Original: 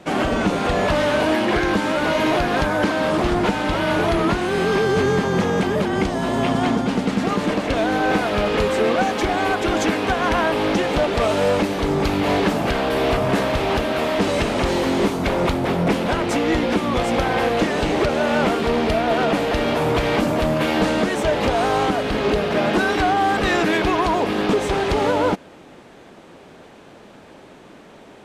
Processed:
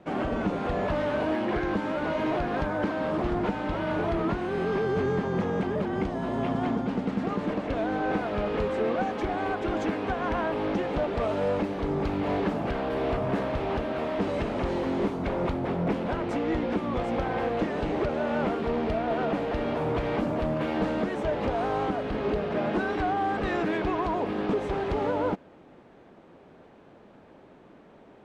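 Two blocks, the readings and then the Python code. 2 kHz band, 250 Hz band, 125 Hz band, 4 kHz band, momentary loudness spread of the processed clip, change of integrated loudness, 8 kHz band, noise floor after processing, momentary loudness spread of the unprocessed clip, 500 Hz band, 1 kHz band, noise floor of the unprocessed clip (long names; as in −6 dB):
−12.0 dB, −7.5 dB, −7.5 dB, −16.5 dB, 2 LU, −8.5 dB, below −20 dB, −53 dBFS, 2 LU, −8.0 dB, −9.0 dB, −44 dBFS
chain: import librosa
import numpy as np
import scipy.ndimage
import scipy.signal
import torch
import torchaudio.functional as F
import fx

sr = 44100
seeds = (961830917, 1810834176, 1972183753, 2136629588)

y = fx.lowpass(x, sr, hz=1300.0, slope=6)
y = y * 10.0 ** (-7.5 / 20.0)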